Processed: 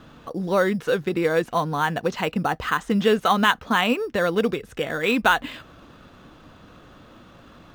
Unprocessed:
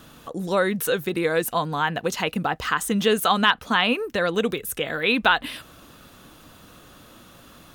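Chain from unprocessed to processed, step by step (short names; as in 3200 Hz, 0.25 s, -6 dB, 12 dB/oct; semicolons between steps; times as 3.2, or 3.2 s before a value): air absorption 160 m; in parallel at -11.5 dB: sample-rate reducer 5100 Hz, jitter 0%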